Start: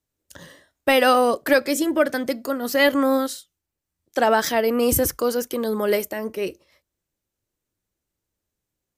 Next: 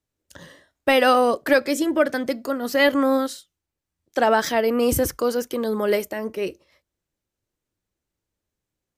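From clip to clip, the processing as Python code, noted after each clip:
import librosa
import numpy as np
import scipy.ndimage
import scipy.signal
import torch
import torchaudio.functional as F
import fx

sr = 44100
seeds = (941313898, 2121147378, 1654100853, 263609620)

y = fx.high_shelf(x, sr, hz=8200.0, db=-7.5)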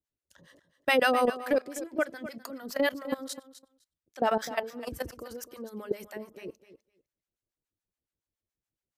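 y = fx.level_steps(x, sr, step_db=18)
y = fx.harmonic_tremolo(y, sr, hz=7.1, depth_pct=100, crossover_hz=690.0)
y = fx.echo_feedback(y, sr, ms=254, feedback_pct=15, wet_db=-14.0)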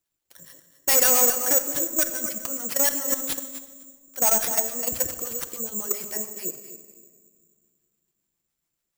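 y = np.clip(10.0 ** (26.5 / 20.0) * x, -1.0, 1.0) / 10.0 ** (26.5 / 20.0)
y = fx.room_shoebox(y, sr, seeds[0], volume_m3=2700.0, walls='mixed', distance_m=0.79)
y = (np.kron(y[::6], np.eye(6)[0]) * 6)[:len(y)]
y = y * librosa.db_to_amplitude(2.0)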